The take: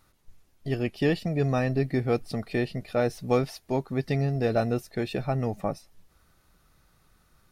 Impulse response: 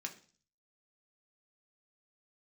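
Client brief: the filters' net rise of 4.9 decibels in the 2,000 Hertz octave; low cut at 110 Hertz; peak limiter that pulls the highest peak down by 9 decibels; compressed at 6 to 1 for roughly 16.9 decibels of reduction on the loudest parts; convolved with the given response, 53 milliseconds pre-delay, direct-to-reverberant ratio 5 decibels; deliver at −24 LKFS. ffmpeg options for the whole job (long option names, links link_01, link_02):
-filter_complex "[0:a]highpass=110,equalizer=frequency=2000:width_type=o:gain=6,acompressor=threshold=-38dB:ratio=6,alimiter=level_in=10dB:limit=-24dB:level=0:latency=1,volume=-10dB,asplit=2[link_01][link_02];[1:a]atrim=start_sample=2205,adelay=53[link_03];[link_02][link_03]afir=irnorm=-1:irlink=0,volume=-4dB[link_04];[link_01][link_04]amix=inputs=2:normalize=0,volume=20dB"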